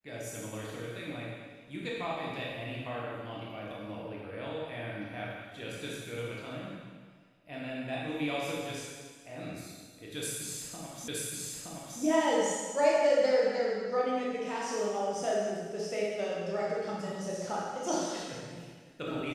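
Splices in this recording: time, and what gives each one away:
11.08 repeat of the last 0.92 s

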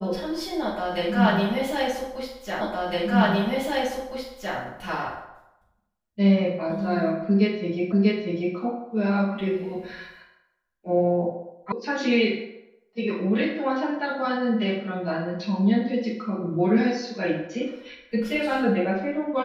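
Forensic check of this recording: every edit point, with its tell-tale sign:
2.61 repeat of the last 1.96 s
7.92 repeat of the last 0.64 s
11.72 sound cut off

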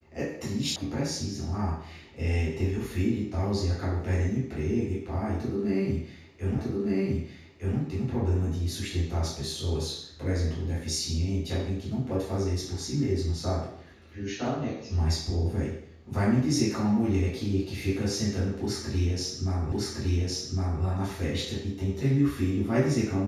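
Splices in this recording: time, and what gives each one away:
0.76 sound cut off
6.58 repeat of the last 1.21 s
19.72 repeat of the last 1.11 s

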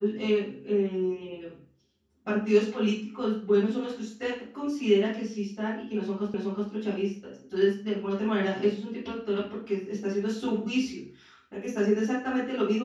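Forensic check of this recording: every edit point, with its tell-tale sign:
6.34 repeat of the last 0.37 s

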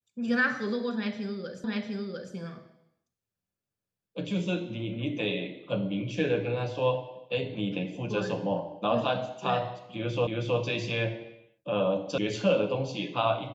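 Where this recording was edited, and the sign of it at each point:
1.64 repeat of the last 0.7 s
10.27 repeat of the last 0.32 s
12.18 sound cut off

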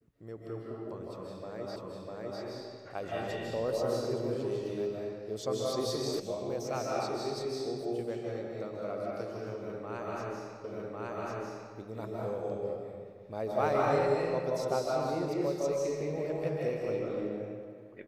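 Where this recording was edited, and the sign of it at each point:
1.76 repeat of the last 0.65 s
6.2 sound cut off
10.64 repeat of the last 1.1 s

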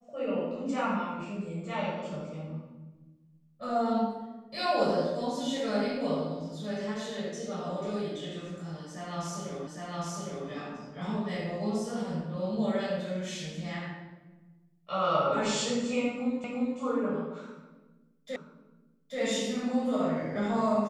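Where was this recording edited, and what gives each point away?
9.67 repeat of the last 0.81 s
16.44 repeat of the last 0.35 s
18.36 repeat of the last 0.83 s

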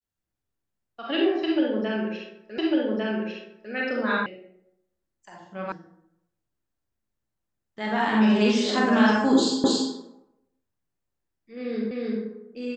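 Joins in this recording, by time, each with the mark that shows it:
2.58 repeat of the last 1.15 s
4.26 sound cut off
5.72 sound cut off
9.64 repeat of the last 0.28 s
11.91 repeat of the last 0.31 s

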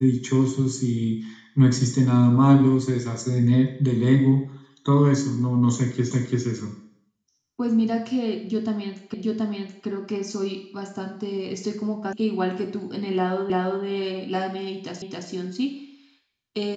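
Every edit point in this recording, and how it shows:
6.11 repeat of the last 0.34 s
9.14 repeat of the last 0.73 s
12.13 sound cut off
13.5 repeat of the last 0.34 s
15.02 repeat of the last 0.27 s

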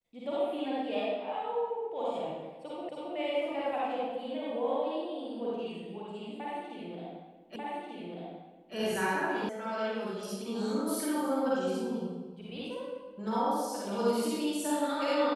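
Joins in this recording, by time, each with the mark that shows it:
2.89 repeat of the last 0.27 s
7.56 repeat of the last 1.19 s
9.49 sound cut off

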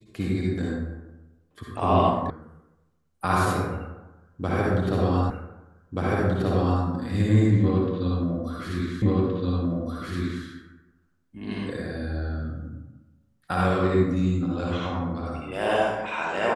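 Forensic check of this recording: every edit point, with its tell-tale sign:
2.3 sound cut off
5.3 repeat of the last 1.53 s
9.02 repeat of the last 1.42 s

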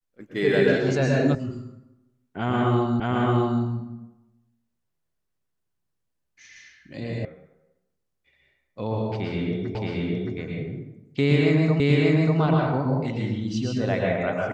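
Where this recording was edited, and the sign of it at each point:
1.35 sound cut off
3 repeat of the last 0.62 s
7.25 sound cut off
9.75 repeat of the last 0.62 s
11.8 repeat of the last 0.59 s

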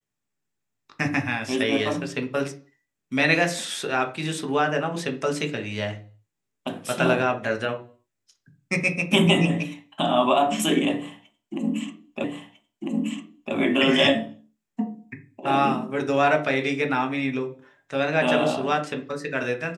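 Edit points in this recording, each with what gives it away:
12.24 repeat of the last 1.3 s

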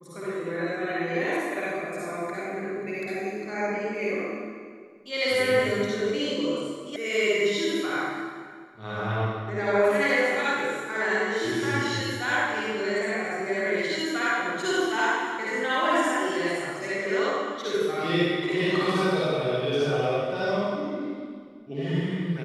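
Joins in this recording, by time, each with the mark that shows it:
6.96 sound cut off

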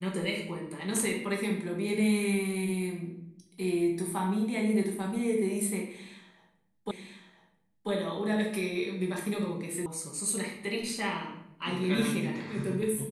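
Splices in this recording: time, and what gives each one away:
6.91 repeat of the last 0.99 s
9.86 sound cut off

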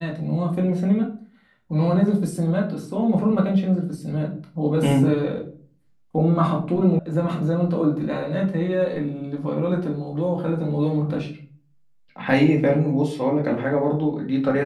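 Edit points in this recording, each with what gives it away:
6.99 sound cut off

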